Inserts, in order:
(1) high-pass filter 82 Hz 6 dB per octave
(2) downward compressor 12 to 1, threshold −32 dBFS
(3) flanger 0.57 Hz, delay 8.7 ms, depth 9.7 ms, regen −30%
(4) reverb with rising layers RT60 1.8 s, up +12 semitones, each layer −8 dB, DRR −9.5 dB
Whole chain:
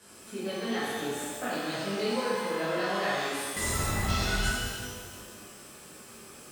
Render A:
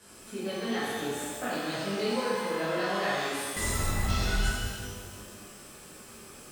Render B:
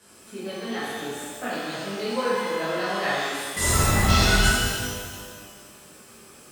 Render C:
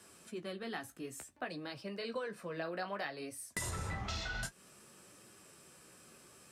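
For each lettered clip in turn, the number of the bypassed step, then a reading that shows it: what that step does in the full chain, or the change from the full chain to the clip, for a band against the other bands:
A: 1, 125 Hz band +1.5 dB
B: 2, average gain reduction 2.0 dB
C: 4, change in integrated loudness −11.0 LU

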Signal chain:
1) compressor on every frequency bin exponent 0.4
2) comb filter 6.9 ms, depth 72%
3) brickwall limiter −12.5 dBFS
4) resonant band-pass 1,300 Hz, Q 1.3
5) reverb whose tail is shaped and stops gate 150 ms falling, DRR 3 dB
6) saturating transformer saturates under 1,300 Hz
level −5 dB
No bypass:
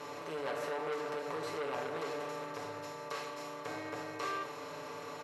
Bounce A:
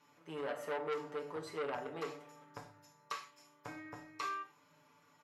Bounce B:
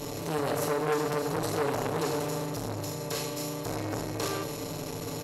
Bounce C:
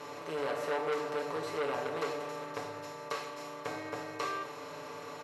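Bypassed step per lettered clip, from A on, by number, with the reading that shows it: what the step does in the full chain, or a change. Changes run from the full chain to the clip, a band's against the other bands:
1, 8 kHz band −2.0 dB
4, 125 Hz band +10.0 dB
3, change in crest factor +1.5 dB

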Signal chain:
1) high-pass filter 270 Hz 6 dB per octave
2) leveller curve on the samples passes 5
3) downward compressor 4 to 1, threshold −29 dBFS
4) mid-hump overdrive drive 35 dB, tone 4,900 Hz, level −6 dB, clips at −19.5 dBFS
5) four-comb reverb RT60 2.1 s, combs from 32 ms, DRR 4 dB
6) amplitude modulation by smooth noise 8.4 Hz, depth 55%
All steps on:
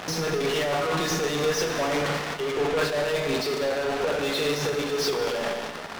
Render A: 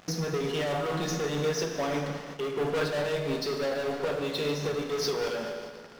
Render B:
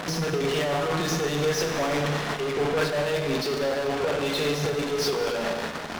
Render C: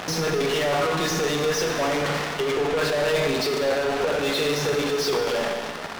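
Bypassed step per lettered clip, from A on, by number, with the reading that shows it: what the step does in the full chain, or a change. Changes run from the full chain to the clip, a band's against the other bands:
4, change in momentary loudness spread +2 LU
1, 125 Hz band +4.5 dB
6, change in integrated loudness +2.5 LU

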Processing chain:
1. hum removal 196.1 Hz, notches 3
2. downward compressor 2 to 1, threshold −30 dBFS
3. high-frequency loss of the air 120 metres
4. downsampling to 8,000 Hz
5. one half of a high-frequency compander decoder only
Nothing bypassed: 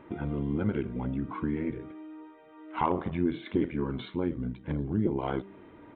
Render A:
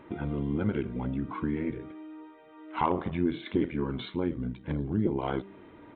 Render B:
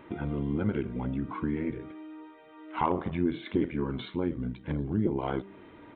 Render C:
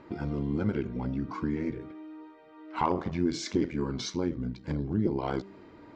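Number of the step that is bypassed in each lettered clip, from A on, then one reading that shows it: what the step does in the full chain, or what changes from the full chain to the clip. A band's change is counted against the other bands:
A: 3, 4 kHz band +3.0 dB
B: 5, 4 kHz band +1.5 dB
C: 4, 4 kHz band +7.5 dB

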